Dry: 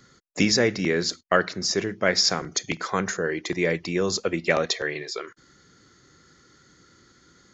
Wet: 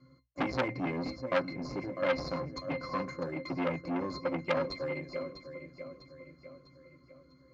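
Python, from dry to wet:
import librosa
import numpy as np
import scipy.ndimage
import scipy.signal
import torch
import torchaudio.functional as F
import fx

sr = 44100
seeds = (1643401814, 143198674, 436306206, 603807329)

p1 = fx.low_shelf(x, sr, hz=64.0, db=-8.5)
p2 = fx.hum_notches(p1, sr, base_hz=60, count=2)
p3 = fx.sample_hold(p2, sr, seeds[0], rate_hz=5500.0, jitter_pct=0)
p4 = p2 + (p3 * 10.0 ** (-9.5 / 20.0))
p5 = fx.octave_resonator(p4, sr, note='C', decay_s=0.13)
p6 = p5 + fx.echo_feedback(p5, sr, ms=650, feedback_pct=47, wet_db=-12, dry=0)
p7 = fx.transformer_sat(p6, sr, knee_hz=1800.0)
y = p7 * 10.0 ** (4.0 / 20.0)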